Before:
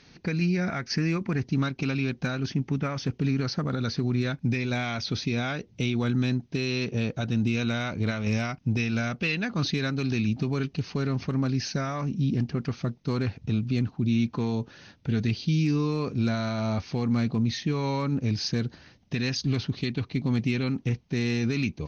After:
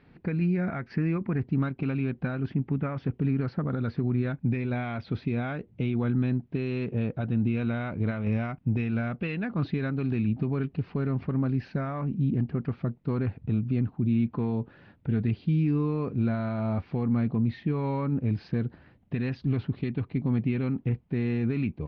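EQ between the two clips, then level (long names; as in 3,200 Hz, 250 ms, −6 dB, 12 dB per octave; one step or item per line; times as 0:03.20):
low-pass filter 2,400 Hz 6 dB per octave
high-frequency loss of the air 430 metres
0.0 dB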